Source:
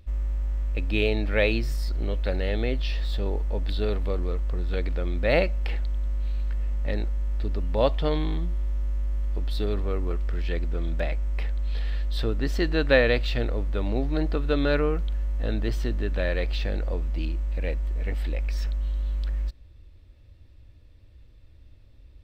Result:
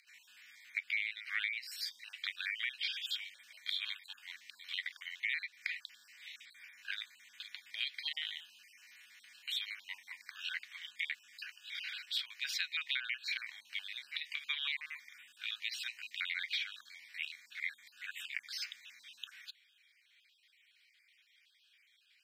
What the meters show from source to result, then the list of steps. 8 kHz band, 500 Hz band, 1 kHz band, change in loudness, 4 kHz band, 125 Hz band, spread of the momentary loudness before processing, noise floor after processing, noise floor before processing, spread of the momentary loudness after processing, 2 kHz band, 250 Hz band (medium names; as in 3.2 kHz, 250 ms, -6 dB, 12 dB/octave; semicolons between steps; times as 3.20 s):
no reading, under -40 dB, -22.0 dB, -12.0 dB, 0.0 dB, under -40 dB, 7 LU, -70 dBFS, -51 dBFS, 15 LU, -5.0 dB, under -40 dB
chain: random holes in the spectrogram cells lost 37%; elliptic high-pass 2.3 kHz, stop band 80 dB; treble shelf 4.2 kHz -9.5 dB; compression 10:1, threshold -45 dBFS, peak gain reduction 17 dB; frequency shift -280 Hz; trim +12 dB